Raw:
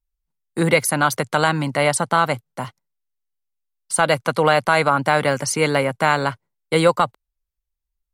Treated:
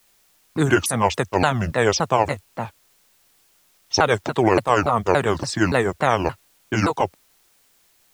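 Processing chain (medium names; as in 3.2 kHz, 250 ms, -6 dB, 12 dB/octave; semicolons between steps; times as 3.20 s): sawtooth pitch modulation -10 st, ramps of 286 ms; level-controlled noise filter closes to 2.1 kHz, open at -16 dBFS; word length cut 10-bit, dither triangular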